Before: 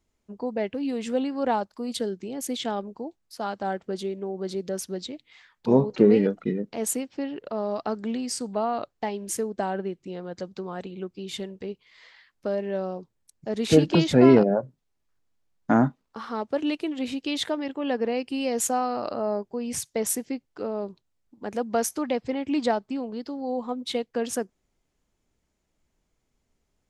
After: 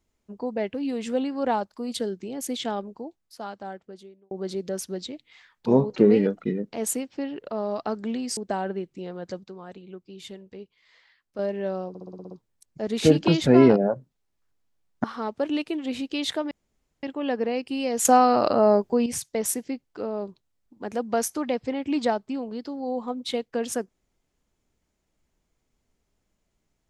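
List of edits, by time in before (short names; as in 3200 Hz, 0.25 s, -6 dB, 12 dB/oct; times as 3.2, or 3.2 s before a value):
2.73–4.31 fade out linear
8.37–9.46 cut
10.53–12.48 gain -7 dB
12.98 stutter 0.06 s, 8 plays
15.71–16.17 cut
17.64 insert room tone 0.52 s
18.66–19.67 gain +9 dB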